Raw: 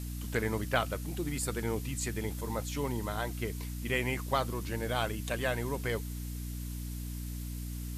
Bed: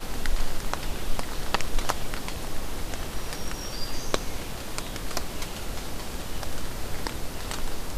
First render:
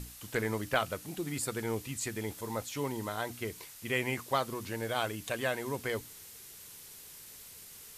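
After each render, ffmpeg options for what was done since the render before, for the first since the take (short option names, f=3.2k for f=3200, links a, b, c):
-af "bandreject=f=60:t=h:w=6,bandreject=f=120:t=h:w=6,bandreject=f=180:t=h:w=6,bandreject=f=240:t=h:w=6,bandreject=f=300:t=h:w=6"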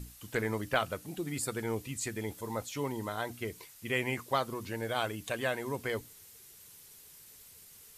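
-af "afftdn=nr=6:nf=-51"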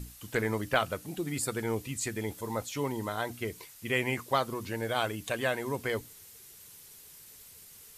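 -af "volume=2.5dB"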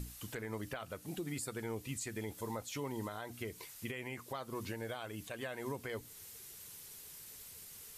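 -af "acompressor=threshold=-43dB:ratio=1.5,alimiter=level_in=6.5dB:limit=-24dB:level=0:latency=1:release=198,volume=-6.5dB"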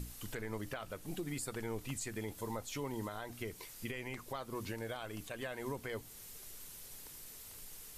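-filter_complex "[1:a]volume=-29.5dB[a];[0:a][a]amix=inputs=2:normalize=0"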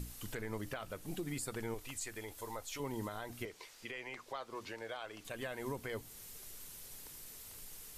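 -filter_complex "[0:a]asettb=1/sr,asplit=3[a][b][c];[a]atrim=end=1.744[d];[b]atrim=start=1.74:end=2.8,asetpts=PTS-STARTPTS,afade=t=in:d=0.004:c=qsin,afade=t=out:st=1.056:d=0.004:c=qsin,equalizer=f=170:w=0.78:g=-13.5[e];[c]atrim=start=2.796[f];[d][e]acrossfade=d=0.004:c1=hsin:c2=qsin[g];[g][f]acrossfade=d=0.004:c1=qsin:c2=hsin,asettb=1/sr,asplit=3[h][i][j];[h]atrim=end=3.454[k];[i]atrim=start=3.45:end=5.25,asetpts=PTS-STARTPTS,afade=t=in:d=0.004:c=qsin,afade=t=out:st=1.796:d=0.004:c=qsin,acrossover=split=370 7000:gain=0.2 1 0.178[l][m][n];[l][m][n]amix=inputs=3:normalize=0[o];[j]atrim=start=5.246[p];[k][o]acrossfade=d=0.004:c1=hsin:c2=qsin[q];[q][p]acrossfade=d=0.004:c1=qsin:c2=hsin"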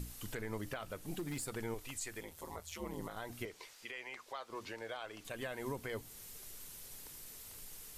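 -filter_complex "[0:a]asettb=1/sr,asplit=3[a][b][c];[a]atrim=end=1.154[d];[b]atrim=start=1.15:end=1.56,asetpts=PTS-STARTPTS,afade=t=in:d=0.004:c=qsin,afade=t=out:st=0.406:d=0.004:c=qsin,aeval=exprs='0.02*(abs(mod(val(0)/0.02+3,4)-2)-1)':c=same[e];[c]atrim=start=1.556[f];[d][e]acrossfade=d=0.004:c1=hsin:c2=qsin[g];[g][f]acrossfade=d=0.004:c1=qsin:c2=hsin,asettb=1/sr,asplit=3[h][i][j];[h]atrim=end=2.204[k];[i]atrim=start=2.2:end=3.17,asetpts=PTS-STARTPTS,afade=t=in:d=0.004:c=qsin,afade=t=out:st=0.966:d=0.004:c=qsin,aeval=exprs='val(0)*sin(2*PI*81*n/s)':c=same[l];[j]atrim=start=3.166[m];[k][l]acrossfade=d=0.004:c1=hsin:c2=qsin[n];[n][m]acrossfade=d=0.004:c1=qsin:c2=hsin,asettb=1/sr,asplit=3[o][p][q];[o]atrim=end=3.734[r];[p]atrim=start=3.73:end=4.5,asetpts=PTS-STARTPTS,afade=t=in:d=0.004:c=qsin,afade=t=out:st=0.766:d=0.004:c=qsin,lowshelf=f=330:g=-11[s];[q]atrim=start=4.496[t];[r][s]acrossfade=d=0.004:c1=hsin:c2=qsin[u];[u][t]acrossfade=d=0.004:c1=qsin:c2=hsin"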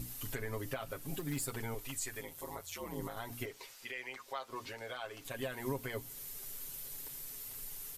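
-af "equalizer=f=14k:w=1.2:g=7,aecho=1:1:7.4:0.75"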